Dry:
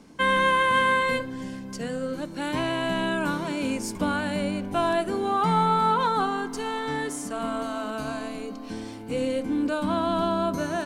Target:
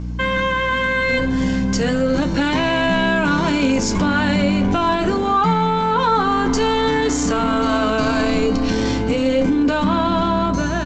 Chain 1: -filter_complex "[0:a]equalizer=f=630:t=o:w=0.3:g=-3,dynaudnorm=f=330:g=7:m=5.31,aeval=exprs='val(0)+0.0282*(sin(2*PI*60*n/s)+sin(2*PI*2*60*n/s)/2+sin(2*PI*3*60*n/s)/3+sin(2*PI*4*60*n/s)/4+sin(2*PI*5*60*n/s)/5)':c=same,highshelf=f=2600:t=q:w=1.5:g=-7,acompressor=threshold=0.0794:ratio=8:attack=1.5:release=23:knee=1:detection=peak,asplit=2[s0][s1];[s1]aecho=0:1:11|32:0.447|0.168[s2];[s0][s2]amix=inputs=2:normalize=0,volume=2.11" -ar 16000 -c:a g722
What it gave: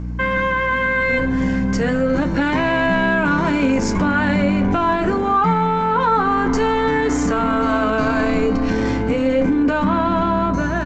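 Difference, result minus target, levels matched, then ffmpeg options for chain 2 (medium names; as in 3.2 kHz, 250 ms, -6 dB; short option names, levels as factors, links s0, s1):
4 kHz band -7.5 dB
-filter_complex "[0:a]equalizer=f=630:t=o:w=0.3:g=-3,dynaudnorm=f=330:g=7:m=5.31,aeval=exprs='val(0)+0.0282*(sin(2*PI*60*n/s)+sin(2*PI*2*60*n/s)/2+sin(2*PI*3*60*n/s)/3+sin(2*PI*4*60*n/s)/4+sin(2*PI*5*60*n/s)/5)':c=same,acompressor=threshold=0.0794:ratio=8:attack=1.5:release=23:knee=1:detection=peak,asplit=2[s0][s1];[s1]aecho=0:1:11|32:0.447|0.168[s2];[s0][s2]amix=inputs=2:normalize=0,volume=2.11" -ar 16000 -c:a g722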